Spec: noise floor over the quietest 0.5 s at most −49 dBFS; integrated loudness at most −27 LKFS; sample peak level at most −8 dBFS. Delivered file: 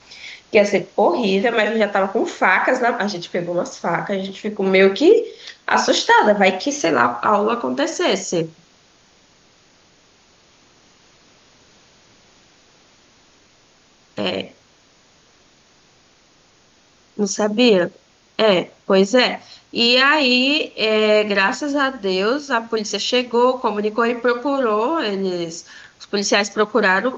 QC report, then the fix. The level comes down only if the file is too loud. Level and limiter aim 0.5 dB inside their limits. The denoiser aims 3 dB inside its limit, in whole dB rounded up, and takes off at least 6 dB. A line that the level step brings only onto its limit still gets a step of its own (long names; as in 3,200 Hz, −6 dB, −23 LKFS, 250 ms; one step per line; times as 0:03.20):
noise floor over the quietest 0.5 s −55 dBFS: in spec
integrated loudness −17.5 LKFS: out of spec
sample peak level −2.5 dBFS: out of spec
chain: level −10 dB